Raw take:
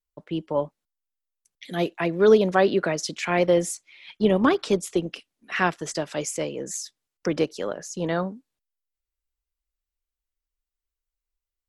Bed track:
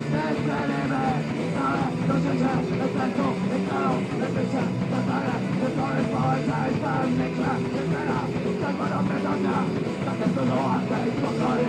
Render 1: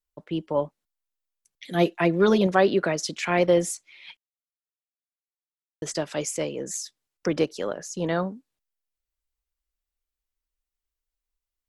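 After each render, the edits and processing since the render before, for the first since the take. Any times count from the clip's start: 1.74–2.47 s: comb 5.7 ms; 4.17–5.82 s: mute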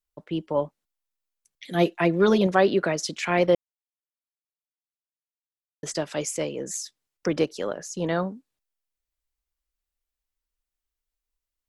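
3.55–5.83 s: mute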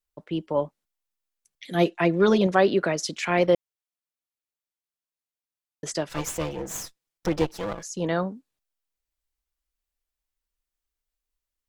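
1.84–2.52 s: low-pass 10 kHz 24 dB/octave; 6.09–7.83 s: comb filter that takes the minimum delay 6 ms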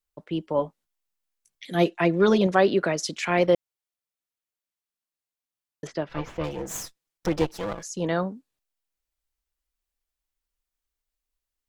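0.57–1.65 s: doubling 18 ms -7 dB; 5.87–6.44 s: distance through air 290 m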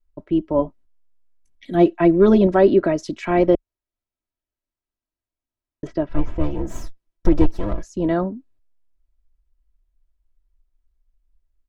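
tilt EQ -4 dB/octave; comb 3.1 ms, depth 56%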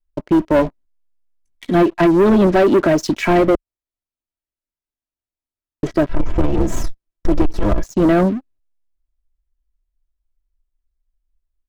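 compression, threshold -15 dBFS, peak gain reduction 8 dB; waveshaping leveller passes 3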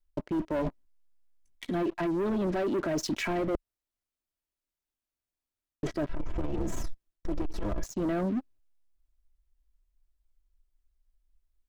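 peak limiter -16.5 dBFS, peak gain reduction 9.5 dB; reverse; compression 6:1, threshold -28 dBFS, peak gain reduction 9.5 dB; reverse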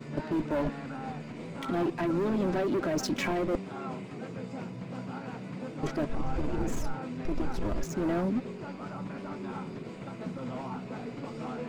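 add bed track -14 dB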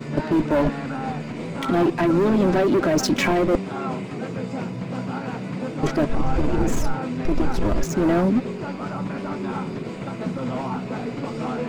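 trim +10 dB

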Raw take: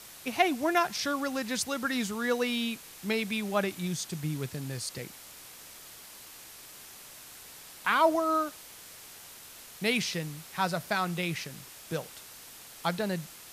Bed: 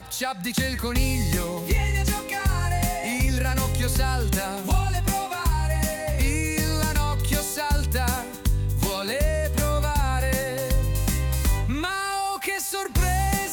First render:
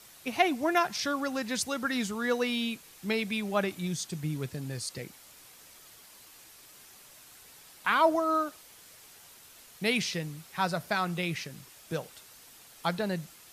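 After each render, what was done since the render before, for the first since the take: noise reduction 6 dB, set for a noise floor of -49 dBFS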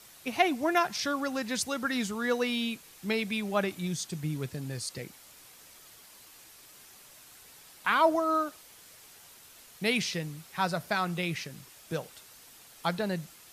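no audible change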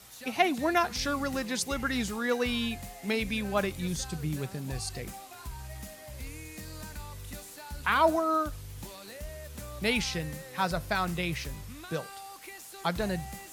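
add bed -19 dB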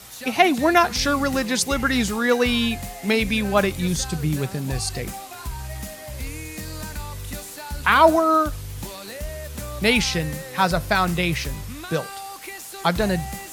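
trim +9.5 dB; peak limiter -1 dBFS, peak gain reduction 1.5 dB

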